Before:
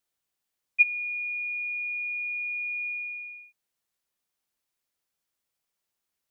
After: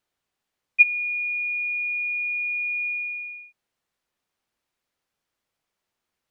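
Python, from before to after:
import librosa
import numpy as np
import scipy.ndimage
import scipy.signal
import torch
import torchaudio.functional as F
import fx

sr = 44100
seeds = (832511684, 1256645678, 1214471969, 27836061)

y = fx.lowpass(x, sr, hz=2700.0, slope=6)
y = y * librosa.db_to_amplitude(7.5)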